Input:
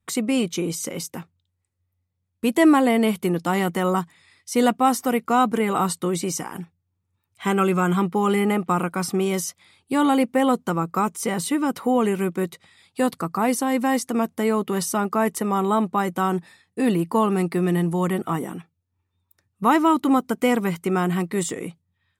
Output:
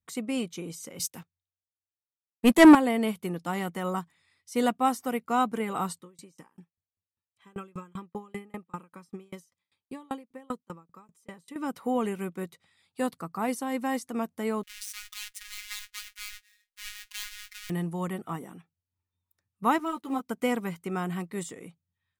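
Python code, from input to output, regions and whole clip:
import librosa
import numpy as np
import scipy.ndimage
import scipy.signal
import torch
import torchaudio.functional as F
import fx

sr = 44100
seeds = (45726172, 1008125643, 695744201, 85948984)

y = fx.chain(x, sr, fx.leveller(passes=2),
    fx.band_widen(depth_pct=70), at=(0.99, 2.75))
y = fx.chain(y, sr, fx.high_shelf(hz=12000.0, db=-6.0),
    fx.notch_comb(f0_hz=720.0),
    fx.tremolo_decay(direction='decaying', hz=5.1, depth_db=32), at=(5.99, 11.56))
y = fx.chain(y, sr, fx.halfwave_hold(),
    fx.cheby2_bandstop(low_hz=120.0, high_hz=630.0, order=4, stop_db=60),
    fx.robotise(hz=208.0), at=(14.63, 17.7))
y = fx.chain(y, sr, fx.law_mismatch(coded='A'),
    fx.ensemble(), at=(19.78, 20.29))
y = fx.peak_eq(y, sr, hz=350.0, db=-3.0, octaves=0.42)
y = fx.upward_expand(y, sr, threshold_db=-29.0, expansion=1.5)
y = y * 10.0 ** (-2.0 / 20.0)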